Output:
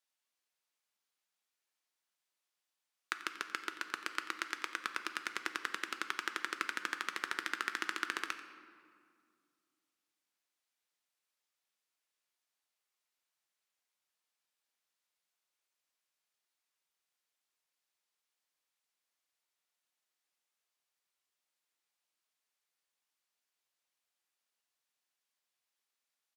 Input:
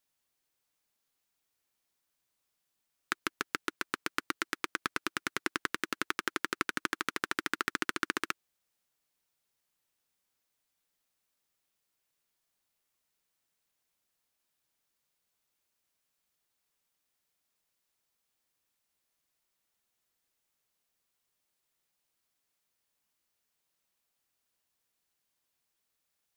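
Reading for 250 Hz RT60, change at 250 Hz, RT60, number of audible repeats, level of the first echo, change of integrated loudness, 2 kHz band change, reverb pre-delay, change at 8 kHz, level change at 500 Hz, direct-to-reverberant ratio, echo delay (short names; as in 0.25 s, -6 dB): 2.8 s, -10.5 dB, 2.1 s, 1, -16.5 dB, -4.0 dB, -3.5 dB, 6 ms, -5.5 dB, -9.0 dB, 7.5 dB, 89 ms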